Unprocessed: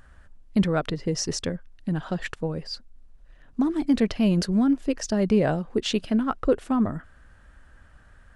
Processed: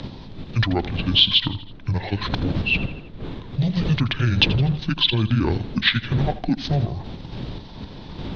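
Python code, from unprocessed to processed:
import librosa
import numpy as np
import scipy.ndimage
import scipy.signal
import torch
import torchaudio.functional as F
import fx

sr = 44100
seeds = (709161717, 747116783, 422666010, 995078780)

p1 = fx.pitch_heads(x, sr, semitones=-10.0)
p2 = fx.dmg_wind(p1, sr, seeds[0], corner_hz=190.0, level_db=-35.0)
p3 = fx.level_steps(p2, sr, step_db=14)
p4 = p2 + (p3 * librosa.db_to_amplitude(0.0))
p5 = fx.lowpass_res(p4, sr, hz=3700.0, q=4.0)
p6 = fx.high_shelf(p5, sr, hz=2100.0, db=11.5)
p7 = p6 + fx.echo_feedback(p6, sr, ms=81, feedback_pct=46, wet_db=-16, dry=0)
p8 = fx.band_squash(p7, sr, depth_pct=40)
y = p8 * librosa.db_to_amplitude(-1.0)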